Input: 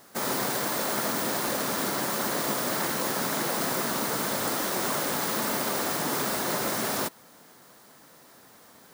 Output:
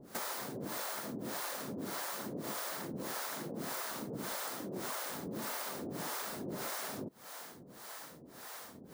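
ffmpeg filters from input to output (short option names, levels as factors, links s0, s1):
-filter_complex "[0:a]acrossover=split=470[s0][s1];[s0]aeval=exprs='val(0)*(1-1/2+1/2*cos(2*PI*1.7*n/s))':c=same[s2];[s1]aeval=exprs='val(0)*(1-1/2-1/2*cos(2*PI*1.7*n/s))':c=same[s3];[s2][s3]amix=inputs=2:normalize=0,acompressor=threshold=0.00447:ratio=6,volume=2.51"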